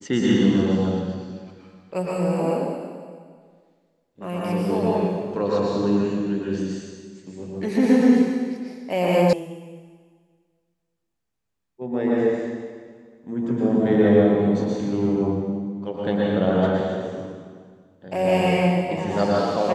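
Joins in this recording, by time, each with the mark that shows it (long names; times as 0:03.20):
0:09.33: cut off before it has died away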